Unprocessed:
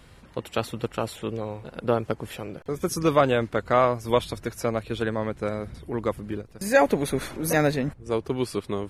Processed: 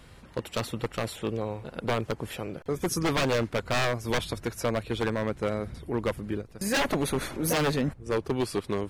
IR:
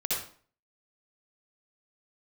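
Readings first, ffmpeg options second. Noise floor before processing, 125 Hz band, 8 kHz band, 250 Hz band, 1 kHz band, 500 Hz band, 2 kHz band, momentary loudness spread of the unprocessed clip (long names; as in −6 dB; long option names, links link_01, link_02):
−51 dBFS, −1.0 dB, +0.5 dB, −2.5 dB, −5.5 dB, −5.0 dB, −1.5 dB, 12 LU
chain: -af "aeval=exprs='0.106*(abs(mod(val(0)/0.106+3,4)-2)-1)':channel_layout=same"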